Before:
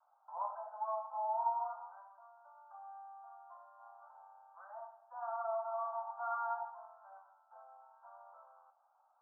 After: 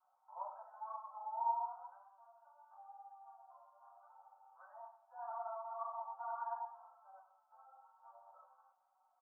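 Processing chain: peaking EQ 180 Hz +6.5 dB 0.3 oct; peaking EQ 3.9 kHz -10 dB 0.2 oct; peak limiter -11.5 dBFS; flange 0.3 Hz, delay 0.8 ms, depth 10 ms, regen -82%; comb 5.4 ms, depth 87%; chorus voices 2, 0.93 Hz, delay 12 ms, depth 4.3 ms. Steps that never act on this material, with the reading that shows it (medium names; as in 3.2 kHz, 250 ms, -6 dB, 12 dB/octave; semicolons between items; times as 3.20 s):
peaking EQ 180 Hz: input has nothing below 570 Hz; peaking EQ 3.9 kHz: input has nothing above 1.6 kHz; peak limiter -11.5 dBFS: peak at its input -24.0 dBFS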